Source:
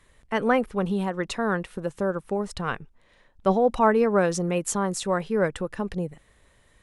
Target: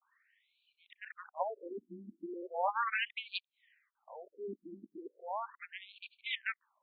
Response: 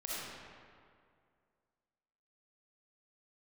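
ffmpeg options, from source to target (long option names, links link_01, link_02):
-af "areverse,aeval=exprs='0.422*(cos(1*acos(clip(val(0)/0.422,-1,1)))-cos(1*PI/2))+0.119*(cos(7*acos(clip(val(0)/0.422,-1,1)))-cos(7*PI/2))':channel_layout=same,afftfilt=real='re*between(b*sr/1024,250*pow(3300/250,0.5+0.5*sin(2*PI*0.37*pts/sr))/1.41,250*pow(3300/250,0.5+0.5*sin(2*PI*0.37*pts/sr))*1.41)':imag='im*between(b*sr/1024,250*pow(3300/250,0.5+0.5*sin(2*PI*0.37*pts/sr))/1.41,250*pow(3300/250,0.5+0.5*sin(2*PI*0.37*pts/sr))*1.41)':win_size=1024:overlap=0.75,volume=-5.5dB"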